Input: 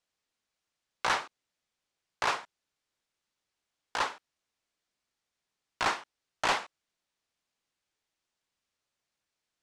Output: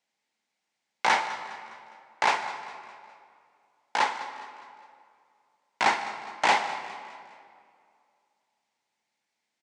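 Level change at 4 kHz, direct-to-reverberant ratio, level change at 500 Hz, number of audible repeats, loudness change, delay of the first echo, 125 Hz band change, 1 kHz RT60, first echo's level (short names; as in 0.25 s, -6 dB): +3.5 dB, 8.5 dB, +4.5 dB, 4, +4.5 dB, 0.205 s, n/a, 2.2 s, -16.0 dB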